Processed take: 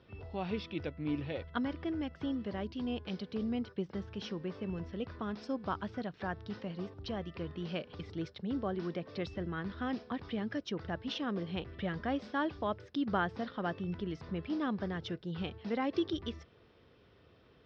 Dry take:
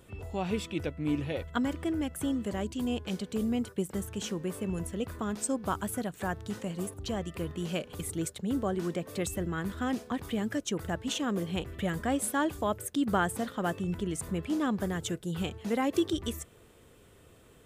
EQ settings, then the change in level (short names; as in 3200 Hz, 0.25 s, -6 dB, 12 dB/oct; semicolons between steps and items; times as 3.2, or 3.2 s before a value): HPF 52 Hz; Chebyshev low-pass 5400 Hz, order 6; -4.0 dB